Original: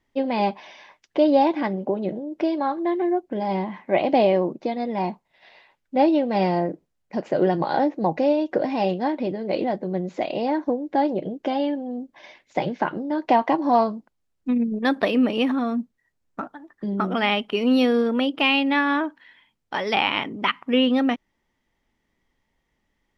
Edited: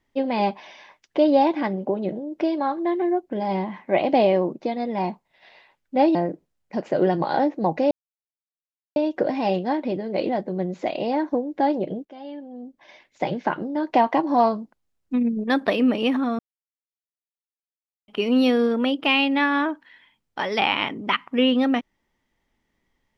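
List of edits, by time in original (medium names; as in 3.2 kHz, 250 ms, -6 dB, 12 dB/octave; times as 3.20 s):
6.15–6.55 s: delete
8.31 s: insert silence 1.05 s
11.40–12.75 s: fade in linear, from -23.5 dB
15.74–17.43 s: mute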